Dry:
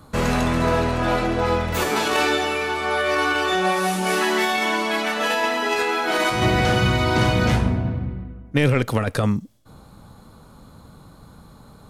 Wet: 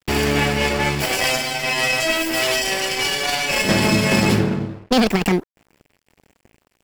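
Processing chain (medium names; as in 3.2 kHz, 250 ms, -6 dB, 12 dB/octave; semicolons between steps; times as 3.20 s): comb filter that takes the minimum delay 0.68 ms; wide varispeed 1.74×; crossover distortion -41 dBFS; trim +3.5 dB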